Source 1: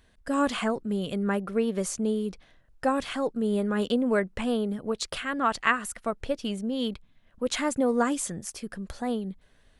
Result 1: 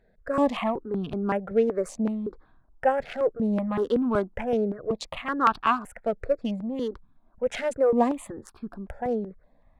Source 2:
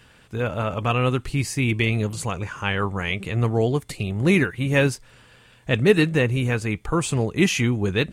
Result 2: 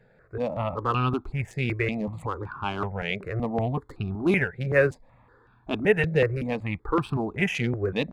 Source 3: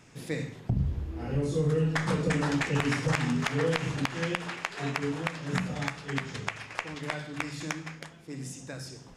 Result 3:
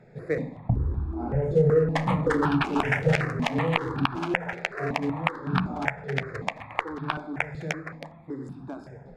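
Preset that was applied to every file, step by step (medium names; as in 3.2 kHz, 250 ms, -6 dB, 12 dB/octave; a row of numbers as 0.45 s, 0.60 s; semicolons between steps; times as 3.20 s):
local Wiener filter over 15 samples; tone controls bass -5 dB, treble -14 dB; stepped phaser 5.3 Hz 290–2000 Hz; normalise loudness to -27 LUFS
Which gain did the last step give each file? +6.5 dB, +2.0 dB, +10.0 dB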